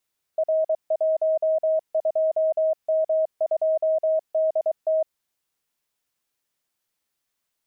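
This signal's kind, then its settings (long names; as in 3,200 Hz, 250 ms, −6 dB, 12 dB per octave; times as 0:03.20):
Morse code "R12M2DT" 23 words per minute 634 Hz −18 dBFS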